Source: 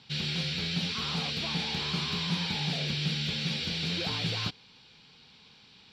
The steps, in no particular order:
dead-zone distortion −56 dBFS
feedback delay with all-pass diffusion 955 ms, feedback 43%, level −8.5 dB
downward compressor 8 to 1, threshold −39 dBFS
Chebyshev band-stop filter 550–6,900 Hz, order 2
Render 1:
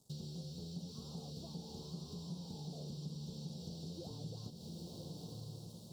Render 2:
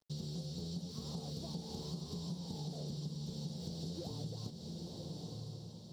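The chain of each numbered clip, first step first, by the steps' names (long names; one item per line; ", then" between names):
feedback delay with all-pass diffusion, then dead-zone distortion, then downward compressor, then Chebyshev band-stop filter
Chebyshev band-stop filter, then dead-zone distortion, then feedback delay with all-pass diffusion, then downward compressor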